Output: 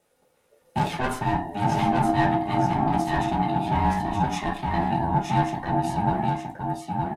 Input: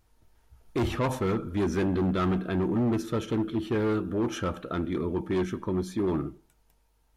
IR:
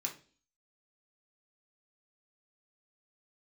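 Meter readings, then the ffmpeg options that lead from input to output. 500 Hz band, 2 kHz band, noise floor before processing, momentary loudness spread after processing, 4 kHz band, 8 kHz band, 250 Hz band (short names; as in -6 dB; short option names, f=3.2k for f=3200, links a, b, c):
-0.5 dB, +7.5 dB, -67 dBFS, 6 LU, +4.5 dB, +4.0 dB, +1.0 dB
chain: -filter_complex "[0:a]aecho=1:1:919:0.631[a];[1:a]atrim=start_sample=2205,afade=t=out:st=0.17:d=0.01,atrim=end_sample=7938,asetrate=57330,aresample=44100[b];[a][b]afir=irnorm=-1:irlink=0,aeval=exprs='val(0)*sin(2*PI*510*n/s)':c=same,volume=7.5dB"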